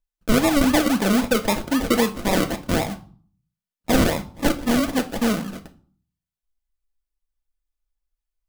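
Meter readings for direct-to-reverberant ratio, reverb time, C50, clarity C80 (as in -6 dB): 5.0 dB, 0.45 s, 15.5 dB, 20.5 dB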